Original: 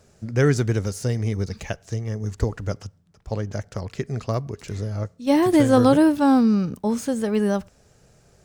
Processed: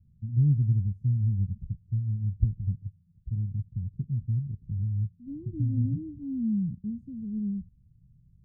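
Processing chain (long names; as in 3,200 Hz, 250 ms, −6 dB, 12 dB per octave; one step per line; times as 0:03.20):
inverse Chebyshev low-pass filter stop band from 590 Hz, stop band 60 dB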